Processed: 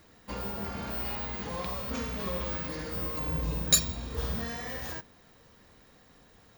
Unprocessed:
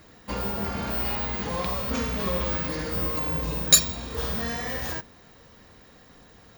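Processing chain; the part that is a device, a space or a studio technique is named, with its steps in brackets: vinyl LP (crackle; pink noise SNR 35 dB); 3.19–4.44 low shelf 220 Hz +7 dB; gain -6.5 dB

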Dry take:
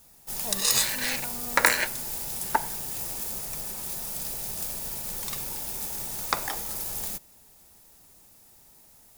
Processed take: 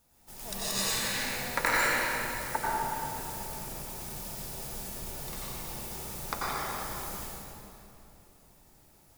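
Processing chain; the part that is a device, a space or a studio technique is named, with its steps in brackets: swimming-pool hall (reverb RT60 2.9 s, pre-delay 84 ms, DRR -7.5 dB; high shelf 3800 Hz -7 dB); gain -8.5 dB

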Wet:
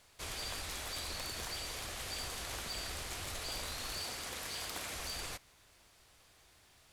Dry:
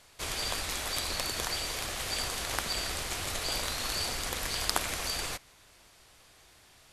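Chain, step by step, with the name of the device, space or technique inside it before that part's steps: 4–4.95 HPF 150 Hz 6 dB/oct; open-reel tape (soft clip -28 dBFS, distortion -12 dB; bell 73 Hz +3 dB 1.11 oct; white noise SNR 38 dB); gain -6 dB

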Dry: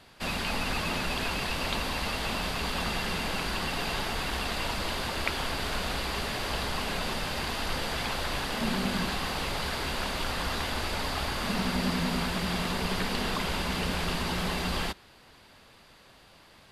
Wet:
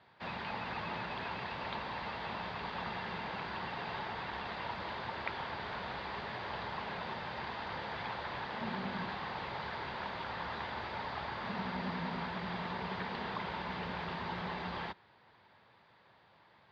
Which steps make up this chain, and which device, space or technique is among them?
guitar cabinet (speaker cabinet 110–3700 Hz, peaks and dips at 110 Hz +5 dB, 270 Hz -6 dB, 910 Hz +7 dB, 1800 Hz +3 dB, 2800 Hz -6 dB); gain -8.5 dB

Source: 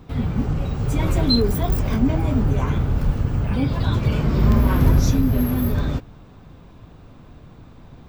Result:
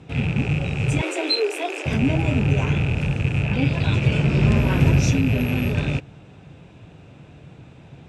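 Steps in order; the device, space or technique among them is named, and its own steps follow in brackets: car door speaker with a rattle (rattling part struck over -24 dBFS, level -25 dBFS; speaker cabinet 93–9000 Hz, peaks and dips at 140 Hz +4 dB, 240 Hz -5 dB, 1100 Hz -9 dB, 2600 Hz +8 dB, 4500 Hz -4 dB, 8700 Hz +6 dB); 1.01–1.86 steep high-pass 300 Hz 96 dB/oct; gain +1.5 dB

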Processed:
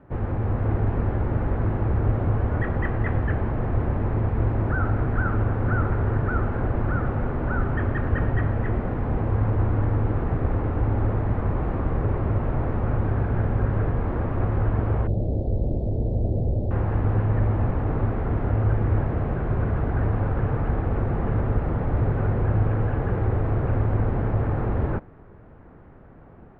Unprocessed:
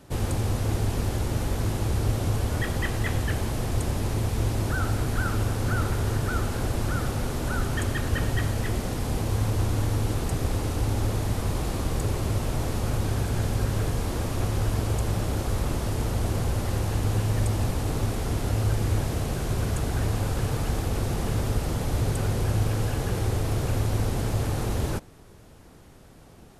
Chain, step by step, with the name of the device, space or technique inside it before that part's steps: 15.07–16.71 Chebyshev band-stop 630–4100 Hz, order 3; action camera in a waterproof case (LPF 1800 Hz 24 dB/oct; AGC gain up to 3 dB; AAC 96 kbps 44100 Hz)

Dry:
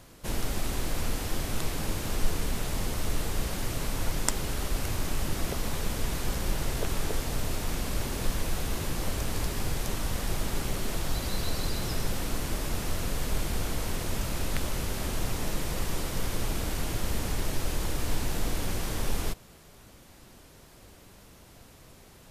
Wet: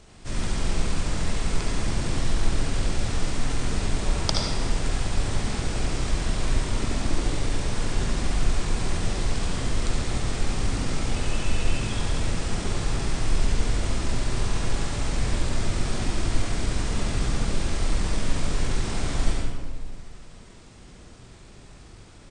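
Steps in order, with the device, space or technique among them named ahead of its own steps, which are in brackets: monster voice (pitch shift -7.5 st; low shelf 180 Hz +3 dB; echo 76 ms -6 dB; reverb RT60 1.5 s, pre-delay 53 ms, DRR -0.5 dB)

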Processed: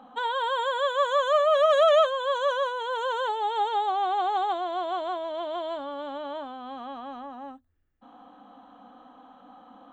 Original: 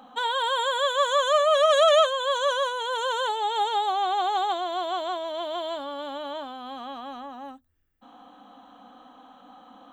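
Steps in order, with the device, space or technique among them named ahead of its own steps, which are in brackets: through cloth (high shelf 3600 Hz -14.5 dB)

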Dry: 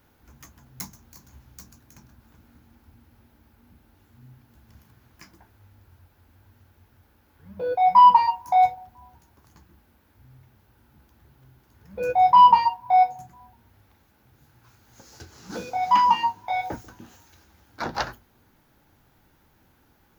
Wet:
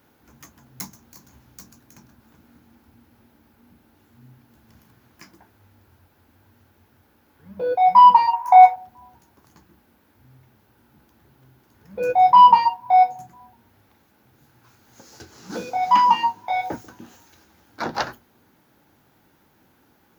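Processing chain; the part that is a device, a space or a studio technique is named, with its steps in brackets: filter by subtraction (in parallel: LPF 250 Hz 12 dB/oct + phase invert); 8.33–8.76 on the sum: graphic EQ 125/250/1000/2000/4000 Hz -10/-11/+11/+6/-4 dB; gain +2 dB

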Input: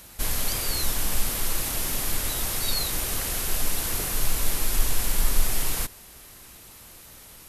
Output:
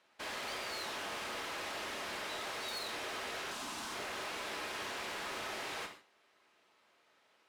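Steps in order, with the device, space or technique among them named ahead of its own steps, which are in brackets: walkie-talkie (BPF 430–2900 Hz; hard clip -37.5 dBFS, distortion -10 dB; gate -50 dBFS, range -14 dB); 3.51–3.94 graphic EQ 250/500/1000/2000/8000 Hz +7/-11/+4/-6/+5 dB; non-linear reverb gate 0.18 s falling, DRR 4.5 dB; gain -2 dB

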